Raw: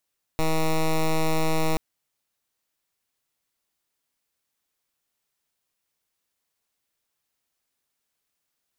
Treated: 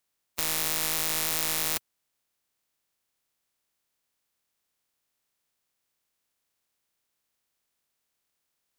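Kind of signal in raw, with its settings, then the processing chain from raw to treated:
pulse wave 159 Hz, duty 10% −21.5 dBFS 1.38 s
compressing power law on the bin magnitudes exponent 0.14
brickwall limiter −7.5 dBFS

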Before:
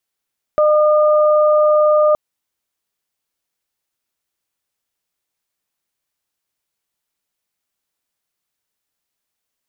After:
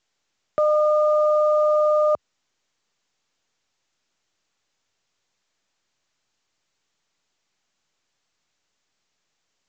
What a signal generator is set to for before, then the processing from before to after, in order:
steady harmonic partials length 1.57 s, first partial 606 Hz, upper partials −8 dB, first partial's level −10 dB
high-pass filter 72 Hz 24 dB per octave
brickwall limiter −13.5 dBFS
mu-law 128 kbit/s 16,000 Hz

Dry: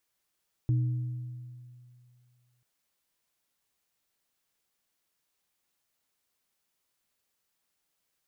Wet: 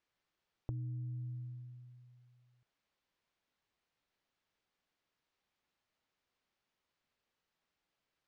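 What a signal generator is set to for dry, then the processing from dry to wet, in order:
inharmonic partials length 1.94 s, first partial 123 Hz, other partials 309 Hz, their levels −14 dB, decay 2.34 s, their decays 1.45 s, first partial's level −21.5 dB
downward compressor 6 to 1, threshold −39 dBFS
high-frequency loss of the air 170 metres

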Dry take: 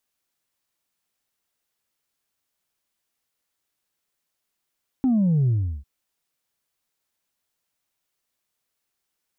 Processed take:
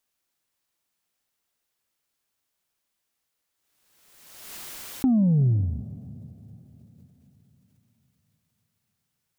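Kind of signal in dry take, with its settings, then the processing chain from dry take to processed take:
bass drop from 270 Hz, over 0.80 s, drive 1 dB, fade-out 0.36 s, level −17 dB
dense smooth reverb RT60 4.2 s, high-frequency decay 0.95×, pre-delay 110 ms, DRR 16.5 dB
background raised ahead of every attack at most 40 dB per second

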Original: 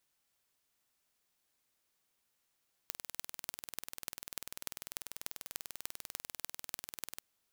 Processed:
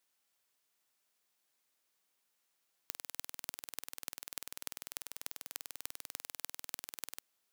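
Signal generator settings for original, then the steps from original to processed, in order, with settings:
impulse train 20.3 per second, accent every 6, −9.5 dBFS 4.32 s
high-pass filter 280 Hz 6 dB per octave

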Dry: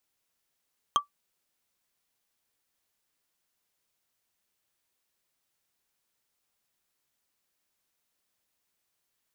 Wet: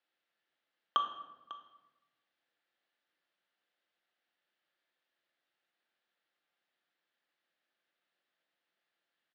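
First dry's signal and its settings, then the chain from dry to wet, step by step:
struck wood, lowest mode 1,160 Hz, decay 0.12 s, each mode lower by 5 dB, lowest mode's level −15 dB
loudspeaker in its box 320–3,600 Hz, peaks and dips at 420 Hz −4 dB, 1,000 Hz −7 dB, 1,700 Hz +4 dB, 2,400 Hz −4 dB
single-tap delay 548 ms −17 dB
rectangular room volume 540 cubic metres, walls mixed, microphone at 0.82 metres

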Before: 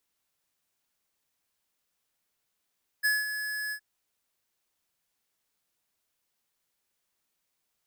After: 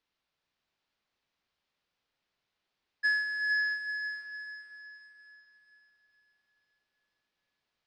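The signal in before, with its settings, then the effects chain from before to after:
note with an ADSR envelope square 1,700 Hz, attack 24 ms, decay 195 ms, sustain −9.5 dB, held 0.69 s, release 76 ms −24 dBFS
low-pass filter 4,700 Hz 24 dB per octave
on a send: feedback delay with all-pass diffusion 483 ms, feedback 46%, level −6 dB

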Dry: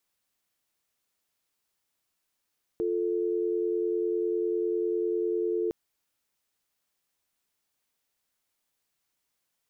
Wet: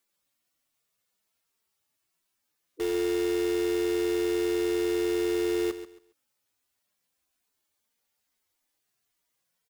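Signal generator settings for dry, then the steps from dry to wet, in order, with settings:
call progress tone dial tone, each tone −28 dBFS 2.91 s
harmonic-percussive split with one part muted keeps harmonic
in parallel at −3 dB: wrap-around overflow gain 32.5 dB
on the sum: repeating echo 137 ms, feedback 24%, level −12 dB

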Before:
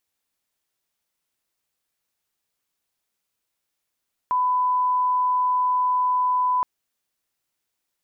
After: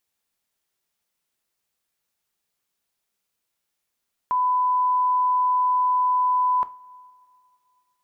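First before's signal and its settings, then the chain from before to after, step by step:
line-up tone −18 dBFS 2.32 s
coupled-rooms reverb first 0.26 s, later 3 s, from −22 dB, DRR 11.5 dB

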